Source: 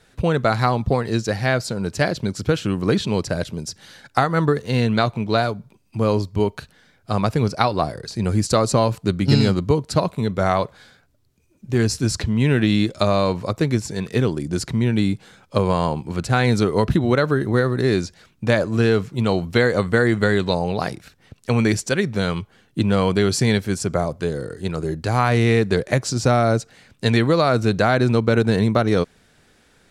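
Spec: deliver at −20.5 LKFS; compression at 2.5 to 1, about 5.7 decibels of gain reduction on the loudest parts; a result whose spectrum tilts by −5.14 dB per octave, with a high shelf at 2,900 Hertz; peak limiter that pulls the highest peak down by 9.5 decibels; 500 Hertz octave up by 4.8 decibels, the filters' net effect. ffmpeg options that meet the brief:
ffmpeg -i in.wav -af "equalizer=frequency=500:width_type=o:gain=5.5,highshelf=frequency=2900:gain=6,acompressor=threshold=-18dB:ratio=2.5,volume=3dB,alimiter=limit=-8.5dB:level=0:latency=1" out.wav

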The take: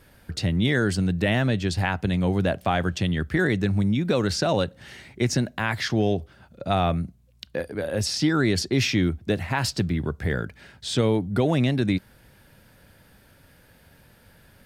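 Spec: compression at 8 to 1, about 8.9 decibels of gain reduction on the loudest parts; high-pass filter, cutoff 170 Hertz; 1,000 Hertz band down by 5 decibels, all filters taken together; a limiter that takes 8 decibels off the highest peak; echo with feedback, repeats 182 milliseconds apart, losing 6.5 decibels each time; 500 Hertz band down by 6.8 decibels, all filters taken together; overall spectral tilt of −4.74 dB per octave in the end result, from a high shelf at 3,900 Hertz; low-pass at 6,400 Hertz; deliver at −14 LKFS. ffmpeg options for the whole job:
ffmpeg -i in.wav -af "highpass=170,lowpass=6400,equalizer=frequency=500:width_type=o:gain=-8,equalizer=frequency=1000:width_type=o:gain=-3,highshelf=frequency=3900:gain=-8.5,acompressor=threshold=-31dB:ratio=8,alimiter=level_in=2dB:limit=-24dB:level=0:latency=1,volume=-2dB,aecho=1:1:182|364|546|728|910|1092:0.473|0.222|0.105|0.0491|0.0231|0.0109,volume=22dB" out.wav

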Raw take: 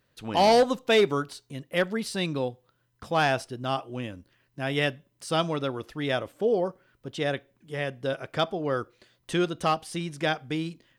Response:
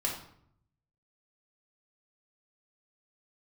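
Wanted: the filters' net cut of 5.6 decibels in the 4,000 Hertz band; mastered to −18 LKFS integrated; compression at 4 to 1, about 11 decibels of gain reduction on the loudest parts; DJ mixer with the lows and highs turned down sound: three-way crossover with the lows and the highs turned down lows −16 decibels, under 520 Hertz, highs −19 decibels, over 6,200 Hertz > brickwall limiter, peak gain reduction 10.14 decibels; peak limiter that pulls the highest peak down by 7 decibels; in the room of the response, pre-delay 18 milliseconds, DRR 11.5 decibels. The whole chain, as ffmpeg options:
-filter_complex "[0:a]equalizer=frequency=4000:width_type=o:gain=-6.5,acompressor=threshold=-30dB:ratio=4,alimiter=level_in=2.5dB:limit=-24dB:level=0:latency=1,volume=-2.5dB,asplit=2[link_01][link_02];[1:a]atrim=start_sample=2205,adelay=18[link_03];[link_02][link_03]afir=irnorm=-1:irlink=0,volume=-16.5dB[link_04];[link_01][link_04]amix=inputs=2:normalize=0,acrossover=split=520 6200:gain=0.158 1 0.112[link_05][link_06][link_07];[link_05][link_06][link_07]amix=inputs=3:normalize=0,volume=28.5dB,alimiter=limit=-7dB:level=0:latency=1"

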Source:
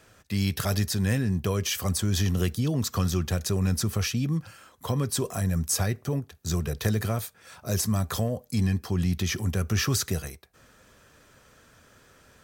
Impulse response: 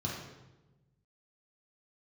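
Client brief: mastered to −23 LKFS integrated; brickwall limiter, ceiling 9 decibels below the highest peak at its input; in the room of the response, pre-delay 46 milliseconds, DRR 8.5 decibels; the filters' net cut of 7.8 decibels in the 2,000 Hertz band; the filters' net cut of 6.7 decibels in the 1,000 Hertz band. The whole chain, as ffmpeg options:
-filter_complex "[0:a]equalizer=frequency=1000:width_type=o:gain=-7,equalizer=frequency=2000:width_type=o:gain=-8,alimiter=limit=-21.5dB:level=0:latency=1,asplit=2[link_01][link_02];[1:a]atrim=start_sample=2205,adelay=46[link_03];[link_02][link_03]afir=irnorm=-1:irlink=0,volume=-12dB[link_04];[link_01][link_04]amix=inputs=2:normalize=0,volume=3dB"

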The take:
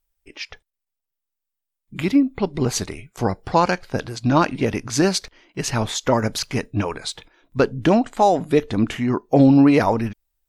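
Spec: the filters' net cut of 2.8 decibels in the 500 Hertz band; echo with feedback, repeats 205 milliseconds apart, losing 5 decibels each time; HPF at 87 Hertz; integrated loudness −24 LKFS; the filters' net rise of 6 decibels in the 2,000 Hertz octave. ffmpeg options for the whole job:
ffmpeg -i in.wav -af "highpass=87,equalizer=frequency=500:width_type=o:gain=-4,equalizer=frequency=2000:width_type=o:gain=8,aecho=1:1:205|410|615|820|1025|1230|1435:0.562|0.315|0.176|0.0988|0.0553|0.031|0.0173,volume=-4.5dB" out.wav

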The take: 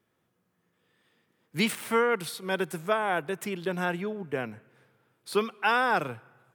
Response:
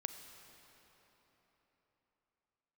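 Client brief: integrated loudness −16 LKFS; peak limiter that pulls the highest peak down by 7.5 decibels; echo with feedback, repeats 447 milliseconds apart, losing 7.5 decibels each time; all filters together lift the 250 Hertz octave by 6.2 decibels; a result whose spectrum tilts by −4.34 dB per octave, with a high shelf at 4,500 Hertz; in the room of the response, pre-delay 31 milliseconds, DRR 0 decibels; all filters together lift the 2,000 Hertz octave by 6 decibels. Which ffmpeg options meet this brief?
-filter_complex "[0:a]equalizer=frequency=250:width_type=o:gain=8,equalizer=frequency=2000:width_type=o:gain=8,highshelf=frequency=4500:gain=3,alimiter=limit=-14.5dB:level=0:latency=1,aecho=1:1:447|894|1341|1788|2235:0.422|0.177|0.0744|0.0312|0.0131,asplit=2[link_01][link_02];[1:a]atrim=start_sample=2205,adelay=31[link_03];[link_02][link_03]afir=irnorm=-1:irlink=0,volume=1.5dB[link_04];[link_01][link_04]amix=inputs=2:normalize=0,volume=8.5dB"

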